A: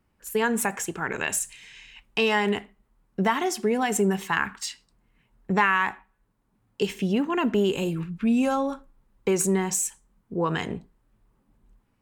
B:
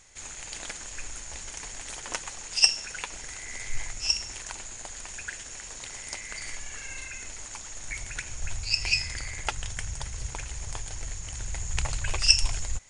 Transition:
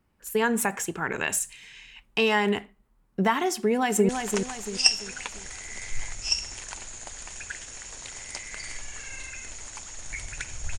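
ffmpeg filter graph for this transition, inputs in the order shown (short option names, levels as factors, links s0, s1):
-filter_complex "[0:a]apad=whole_dur=10.78,atrim=end=10.78,atrim=end=4.092[s0];[1:a]atrim=start=1.868:end=8.56[s1];[s0][s1]acrossfade=d=0.004:c1=hsin:c2=hsin,asplit=2[s2][s3];[s3]afade=t=in:st=3.56:d=0.01,afade=t=out:st=4.09:d=0.01,aecho=0:1:340|680|1020|1360|1700:0.501187|0.200475|0.08019|0.032076|0.0128304[s4];[s2][s4]amix=inputs=2:normalize=0"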